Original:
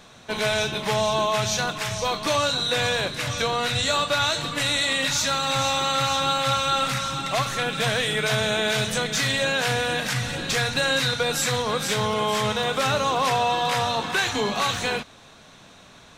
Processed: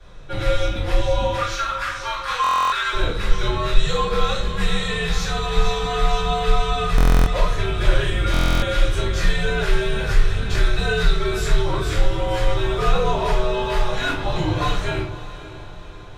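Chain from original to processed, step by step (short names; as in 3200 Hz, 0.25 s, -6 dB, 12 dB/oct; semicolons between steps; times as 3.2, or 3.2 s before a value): tilt -2 dB/oct; 13.9–14.35 reverse; frequency shift -100 Hz; 1.38–2.93 resonant high-pass 1300 Hz, resonance Q 3.6; diffused feedback echo 0.572 s, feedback 54%, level -15 dB; shoebox room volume 32 m³, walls mixed, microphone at 2.4 m; stuck buffer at 2.42/6.96/8.32, samples 1024, times 12; gain -13 dB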